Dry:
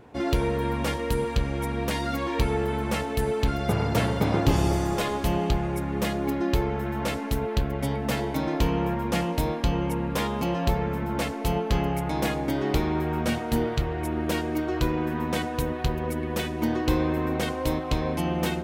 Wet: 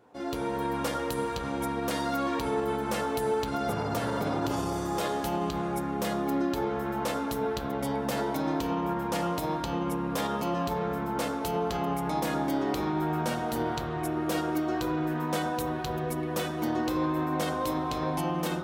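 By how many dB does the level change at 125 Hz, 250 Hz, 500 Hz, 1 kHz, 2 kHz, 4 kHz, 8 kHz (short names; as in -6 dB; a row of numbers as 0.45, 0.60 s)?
-8.0, -3.0, -2.5, 0.0, -4.0, -4.0, -1.5 dB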